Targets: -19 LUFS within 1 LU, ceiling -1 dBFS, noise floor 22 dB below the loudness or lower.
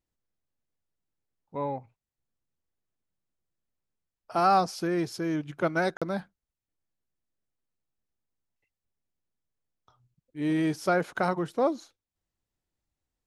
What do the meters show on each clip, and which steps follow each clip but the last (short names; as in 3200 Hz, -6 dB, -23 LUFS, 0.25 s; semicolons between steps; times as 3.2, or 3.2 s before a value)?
dropouts 1; longest dropout 46 ms; loudness -28.5 LUFS; peak -12.0 dBFS; loudness target -19.0 LUFS
-> interpolate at 5.97, 46 ms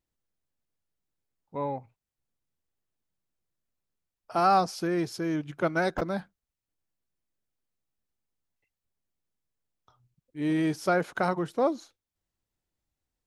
dropouts 0; loudness -28.5 LUFS; peak -12.0 dBFS; loudness target -19.0 LUFS
-> gain +9.5 dB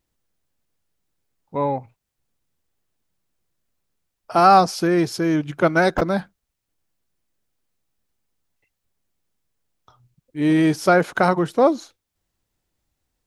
loudness -19.0 LUFS; peak -2.5 dBFS; noise floor -80 dBFS